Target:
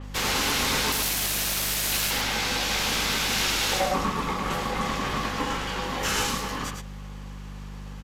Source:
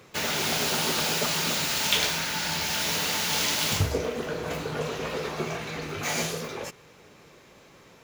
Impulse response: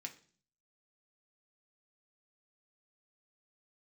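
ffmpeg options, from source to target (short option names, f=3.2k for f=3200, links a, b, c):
-filter_complex "[0:a]asettb=1/sr,asplit=3[a][b][c];[a]atrim=end=0.924[d];[b]atrim=start=0.92:end=2.11,asetpts=PTS-STARTPTS,afade=t=in:d=0.004:c=qsin,afade=t=out:st=1.186:d=0.004:c=qsin,aemphasis=mode=production:type=riaa[e];[c]atrim=start=2.106[f];[d][e]acrossfade=d=0.004:c1=hsin:c2=qsin[g];[g][f]acrossfade=d=0.004:c1=qsin:c2=hsin,aeval=exprs='val(0)*sin(2*PI*660*n/s)':c=same,volume=25dB,asoftclip=hard,volume=-25dB,aeval=exprs='val(0)+0.00891*(sin(2*PI*50*n/s)+sin(2*PI*2*50*n/s)/2+sin(2*PI*3*50*n/s)/3+sin(2*PI*4*50*n/s)/4+sin(2*PI*5*50*n/s)/5)':c=same,aecho=1:1:106:0.501,asplit=2[h][i];[1:a]atrim=start_sample=2205,highshelf=f=8.8k:g=10.5[j];[i][j]afir=irnorm=-1:irlink=0,volume=-9.5dB[k];[h][k]amix=inputs=2:normalize=0,aresample=32000,aresample=44100,adynamicequalizer=threshold=0.0126:dfrequency=5400:dqfactor=0.7:tfrequency=5400:tqfactor=0.7:attack=5:release=100:ratio=0.375:range=2.5:mode=cutabove:tftype=highshelf,volume=4.5dB"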